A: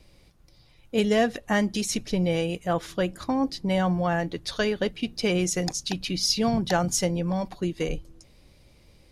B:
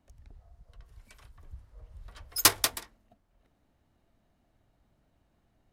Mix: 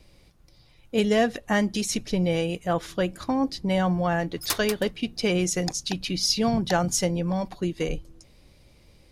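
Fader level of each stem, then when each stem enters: +0.5, -7.0 dB; 0.00, 2.05 s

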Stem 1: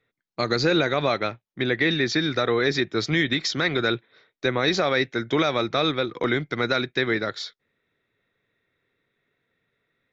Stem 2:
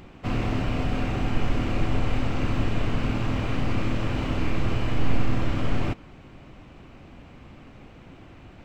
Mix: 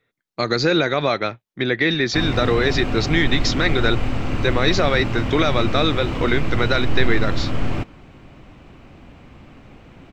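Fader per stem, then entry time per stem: +3.0, +2.5 dB; 0.00, 1.90 s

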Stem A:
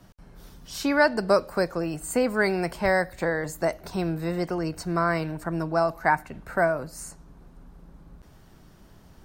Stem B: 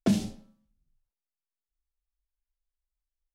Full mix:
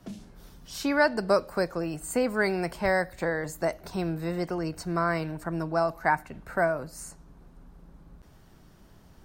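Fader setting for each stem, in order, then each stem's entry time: -2.5, -16.5 dB; 0.00, 0.00 s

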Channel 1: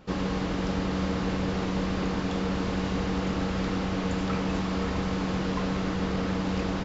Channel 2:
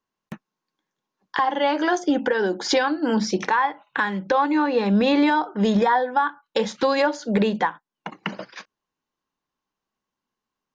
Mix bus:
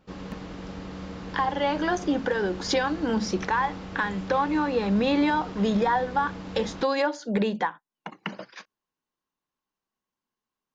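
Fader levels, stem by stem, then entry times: -9.5, -4.5 dB; 0.00, 0.00 s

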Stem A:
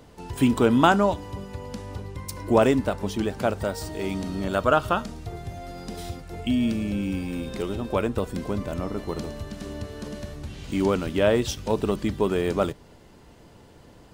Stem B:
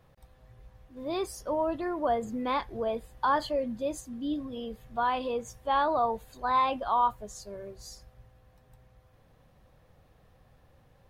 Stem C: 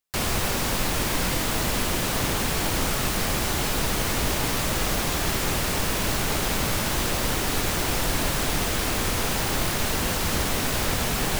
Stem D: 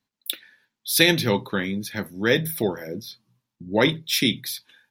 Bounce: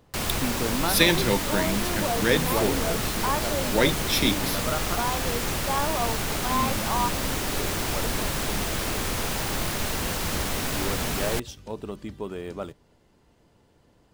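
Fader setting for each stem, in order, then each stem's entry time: -10.5, -2.0, -3.0, -2.5 dB; 0.00, 0.00, 0.00, 0.00 s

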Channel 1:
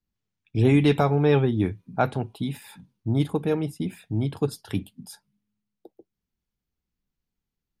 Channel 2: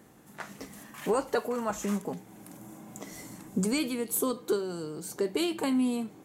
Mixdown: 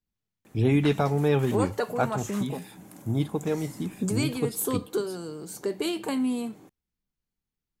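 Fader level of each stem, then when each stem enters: -3.5, 0.0 dB; 0.00, 0.45 s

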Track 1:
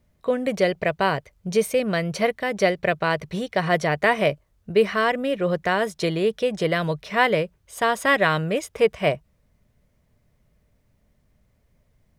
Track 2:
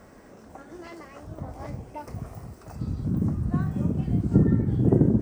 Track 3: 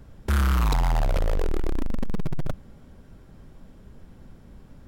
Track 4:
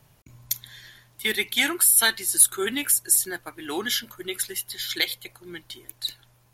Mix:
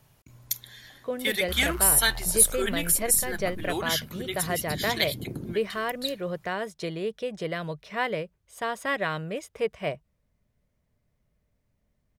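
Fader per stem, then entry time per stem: -9.0, -17.0, -14.5, -2.5 dB; 0.80, 0.35, 1.20, 0.00 s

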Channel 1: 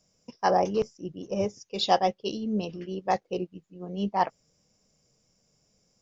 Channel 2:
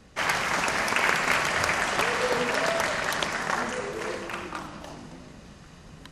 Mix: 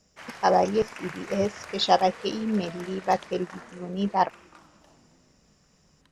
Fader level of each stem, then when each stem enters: +2.5, -17.0 dB; 0.00, 0.00 s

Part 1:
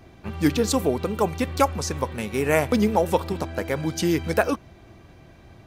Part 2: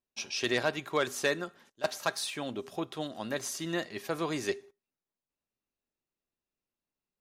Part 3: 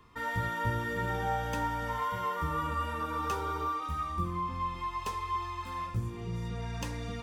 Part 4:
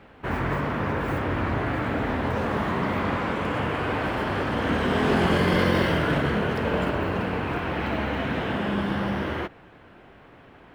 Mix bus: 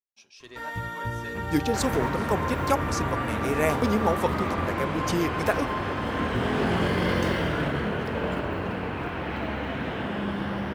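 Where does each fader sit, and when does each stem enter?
-4.5, -16.5, -0.5, -3.5 dB; 1.10, 0.00, 0.40, 1.50 s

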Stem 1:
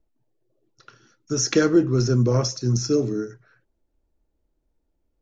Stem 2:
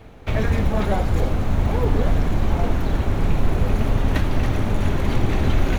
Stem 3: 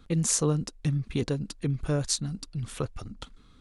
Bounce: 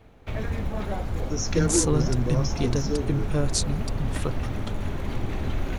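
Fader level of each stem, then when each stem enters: -8.0, -9.0, +1.5 dB; 0.00, 0.00, 1.45 s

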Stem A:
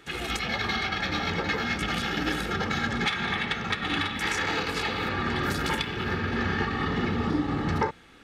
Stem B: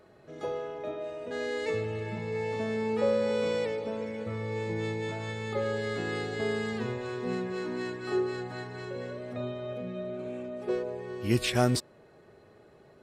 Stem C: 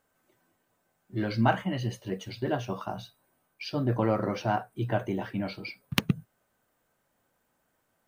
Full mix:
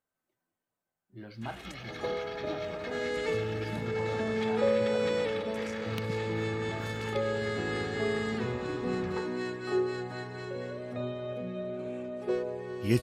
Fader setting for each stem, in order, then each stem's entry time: -15.0, 0.0, -15.5 dB; 1.35, 1.60, 0.00 s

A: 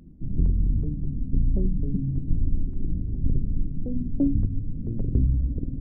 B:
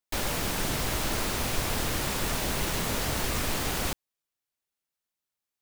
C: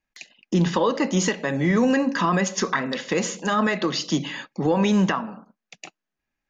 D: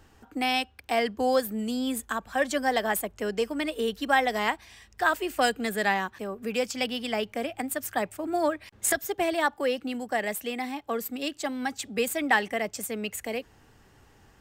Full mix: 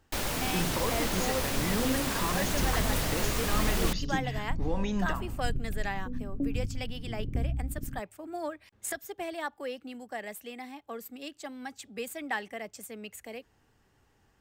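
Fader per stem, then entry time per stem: -9.0, -2.0, -12.5, -10.0 dB; 2.20, 0.00, 0.00, 0.00 s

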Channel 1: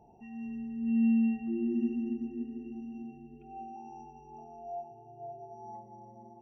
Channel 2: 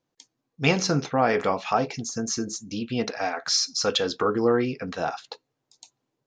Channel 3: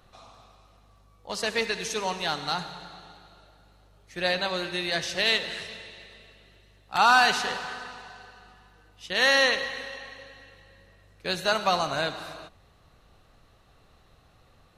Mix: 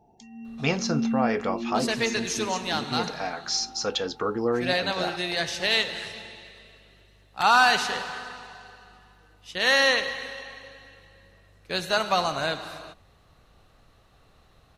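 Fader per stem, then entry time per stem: -1.0, -4.0, +0.5 dB; 0.00, 0.00, 0.45 s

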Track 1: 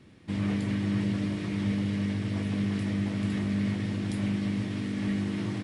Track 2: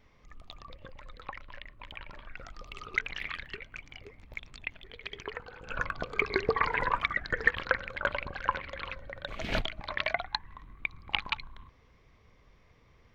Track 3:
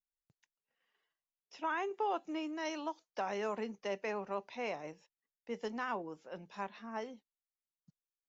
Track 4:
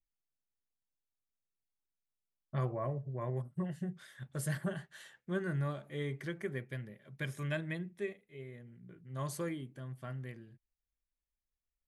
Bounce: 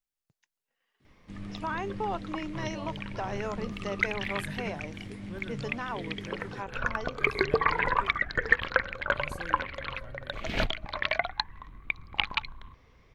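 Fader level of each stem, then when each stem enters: -12.5, +2.5, +2.0, -6.5 dB; 1.00, 1.05, 0.00, 0.00 s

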